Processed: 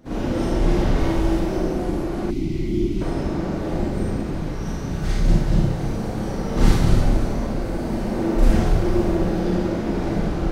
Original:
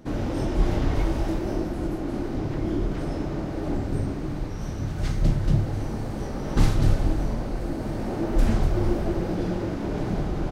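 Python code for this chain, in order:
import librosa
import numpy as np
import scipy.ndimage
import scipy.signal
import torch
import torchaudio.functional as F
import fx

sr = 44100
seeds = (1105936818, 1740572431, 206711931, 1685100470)

y = fx.rev_schroeder(x, sr, rt60_s=0.85, comb_ms=33, drr_db=-8.0)
y = fx.spec_box(y, sr, start_s=2.31, length_s=0.7, low_hz=390.0, high_hz=1900.0, gain_db=-17)
y = F.gain(torch.from_numpy(y), -3.5).numpy()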